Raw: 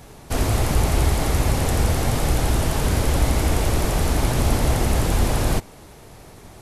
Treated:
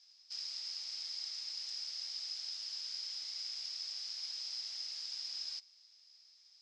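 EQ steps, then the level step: ladder band-pass 5.2 kHz, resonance 90%; distance through air 180 m; +2.5 dB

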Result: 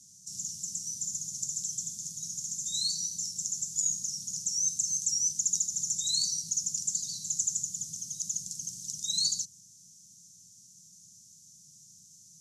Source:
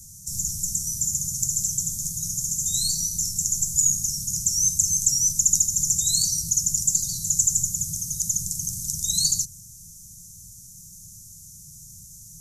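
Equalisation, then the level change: band-pass 360–4400 Hz; 0.0 dB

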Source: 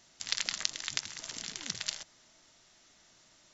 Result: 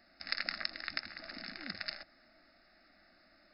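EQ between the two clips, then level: brick-wall FIR low-pass 5.3 kHz; static phaser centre 650 Hz, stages 8; +4.0 dB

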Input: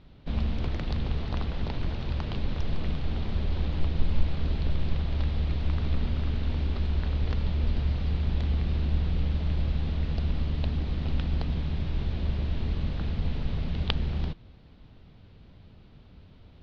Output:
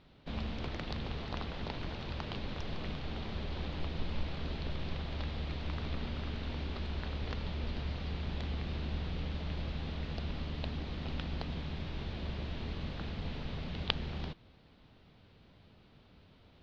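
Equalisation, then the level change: bass shelf 95 Hz -8 dB; bass shelf 380 Hz -5 dB; -1.5 dB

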